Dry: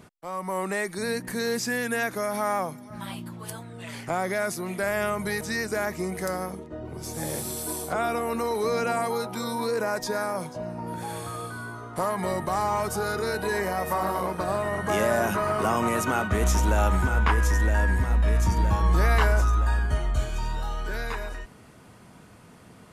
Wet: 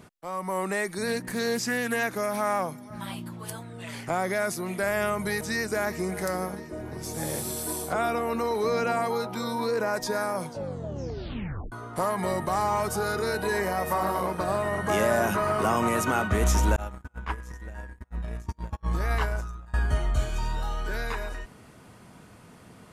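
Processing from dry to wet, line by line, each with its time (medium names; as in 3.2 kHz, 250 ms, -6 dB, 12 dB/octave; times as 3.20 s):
1.07–2.68 s: loudspeaker Doppler distortion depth 0.12 ms
5.51–6.12 s: echo throw 350 ms, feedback 70%, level -15 dB
8.10–9.94 s: peaking EQ 9.8 kHz -7.5 dB 0.85 oct
10.47 s: tape stop 1.25 s
16.76–19.74 s: gate -19 dBFS, range -44 dB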